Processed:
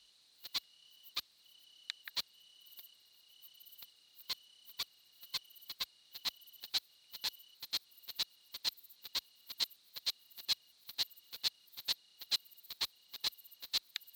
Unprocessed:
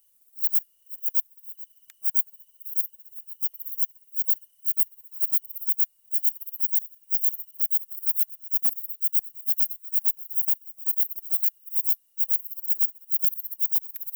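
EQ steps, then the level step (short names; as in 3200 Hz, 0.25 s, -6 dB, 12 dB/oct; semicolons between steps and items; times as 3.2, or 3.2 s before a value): HPF 49 Hz; synth low-pass 4100 Hz, resonance Q 7.4; +7.5 dB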